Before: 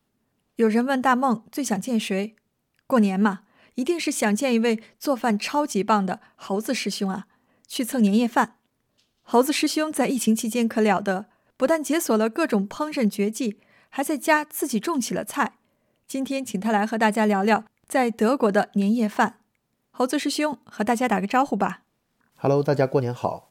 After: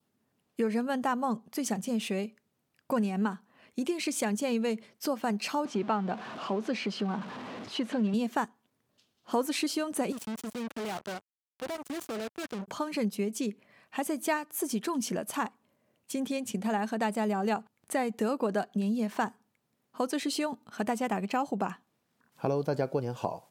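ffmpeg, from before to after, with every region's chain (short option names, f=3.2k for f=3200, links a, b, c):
-filter_complex "[0:a]asettb=1/sr,asplit=3[a][b][c];[a]atrim=end=5.654[d];[b]atrim=start=5.65:end=8.14,asetpts=PTS-STARTPTS,afade=t=in:d=0.004:c=qsin,afade=t=out:st=2.486:d=0.004:c=qsin,aeval=exprs='val(0)+0.5*0.0299*sgn(val(0))':c=same,highpass=130,lowpass=3.2k[e];[c]atrim=start=8.136[f];[d][e]acrossfade=d=0.004:c1=hsin:c2=qsin[g];[g][f]acrossfade=d=0.004:c1=qsin:c2=hsin,asettb=1/sr,asplit=3[h][i][j];[h]atrim=end=10.124[k];[i]atrim=start=10.12:end=12.68,asetpts=PTS-STARTPTS,afade=t=in:d=0.004:c=qsin,afade=t=out:st=2.556:d=0.004:c=qsin,highshelf=f=8.4k:g=-5,acrusher=bits=3:mix=0:aa=0.5,aeval=exprs='(tanh(28.2*val(0)+0.5)-tanh(0.5))/28.2':c=same[l];[j]atrim=start=12.676[m];[k][l]acrossfade=d=0.004:c1=hsin:c2=qsin[n];[n][m]acrossfade=d=0.004:c1=qsin:c2=hsin,acompressor=threshold=-27dB:ratio=2,highpass=100,adynamicequalizer=threshold=0.00398:dfrequency=1900:dqfactor=2.1:tfrequency=1900:tqfactor=2.1:attack=5:release=100:ratio=0.375:range=3:mode=cutabove:tftype=bell,volume=-3dB"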